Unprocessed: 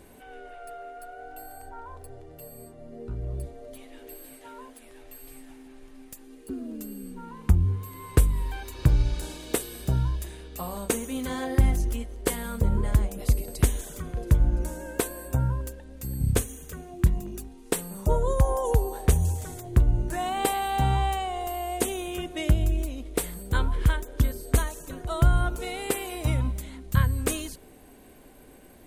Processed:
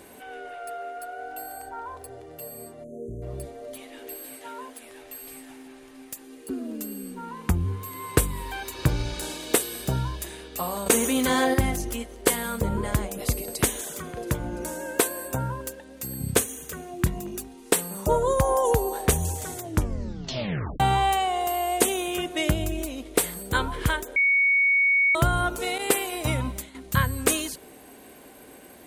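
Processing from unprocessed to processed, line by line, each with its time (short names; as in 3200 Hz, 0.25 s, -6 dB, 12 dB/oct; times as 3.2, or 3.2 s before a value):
2.84–3.22 spectral delete 700–6000 Hz
10.86–11.54 fast leveller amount 50%
13.53–16.57 low shelf 79 Hz -11 dB
19.63 tape stop 1.17 s
24.16–25.15 bleep 2230 Hz -24 dBFS
25.78–26.75 expander -34 dBFS
whole clip: HPF 200 Hz 6 dB/oct; low shelf 490 Hz -3 dB; gain +7 dB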